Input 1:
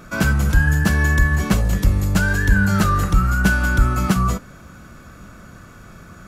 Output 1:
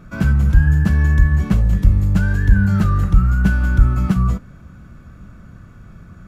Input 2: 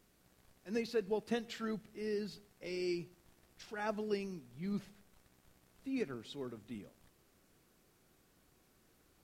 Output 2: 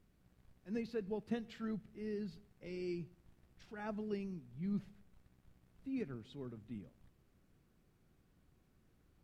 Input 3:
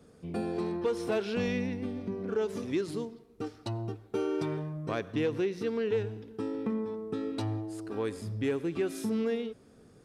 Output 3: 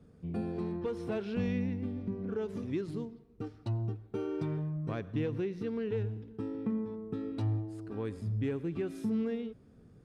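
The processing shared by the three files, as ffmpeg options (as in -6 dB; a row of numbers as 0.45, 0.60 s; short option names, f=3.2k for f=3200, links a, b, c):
-af "bass=f=250:g=11,treble=f=4k:g=-7,volume=-7dB"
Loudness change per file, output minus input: +2.0, -3.0, -2.5 LU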